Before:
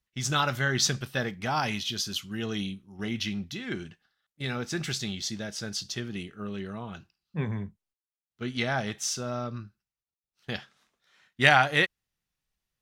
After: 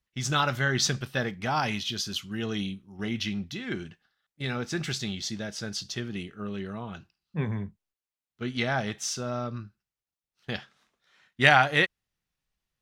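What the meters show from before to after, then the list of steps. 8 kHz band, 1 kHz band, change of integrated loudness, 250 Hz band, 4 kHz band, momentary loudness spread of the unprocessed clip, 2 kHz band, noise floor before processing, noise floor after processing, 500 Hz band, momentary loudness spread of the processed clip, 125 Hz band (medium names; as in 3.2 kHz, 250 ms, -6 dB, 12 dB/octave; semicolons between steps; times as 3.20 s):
-1.5 dB, +1.0 dB, +0.5 dB, +1.0 dB, 0.0 dB, 14 LU, +0.5 dB, under -85 dBFS, under -85 dBFS, +1.0 dB, 13 LU, +1.0 dB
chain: treble shelf 6.8 kHz -5.5 dB; trim +1 dB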